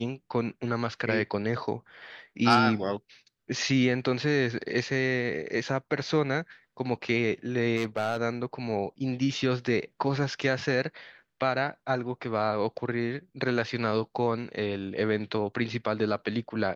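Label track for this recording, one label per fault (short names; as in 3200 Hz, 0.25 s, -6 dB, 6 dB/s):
7.760000	8.210000	clipped -23 dBFS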